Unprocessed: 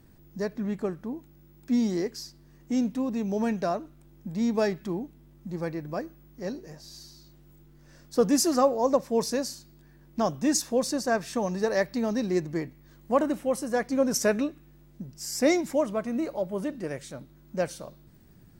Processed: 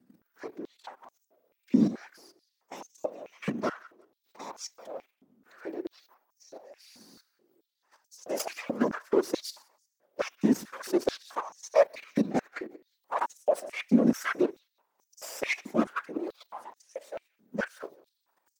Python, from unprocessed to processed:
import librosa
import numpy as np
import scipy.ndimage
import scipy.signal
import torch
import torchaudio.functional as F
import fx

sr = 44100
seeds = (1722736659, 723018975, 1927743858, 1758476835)

y = fx.lower_of_two(x, sr, delay_ms=3.8)
y = fx.high_shelf(y, sr, hz=2100.0, db=-3.5)
y = fx.level_steps(y, sr, step_db=14)
y = fx.whisperise(y, sr, seeds[0])
y = fx.echo_feedback(y, sr, ms=178, feedback_pct=26, wet_db=-23.5)
y = fx.filter_held_highpass(y, sr, hz=4.6, low_hz=220.0, high_hz=6300.0)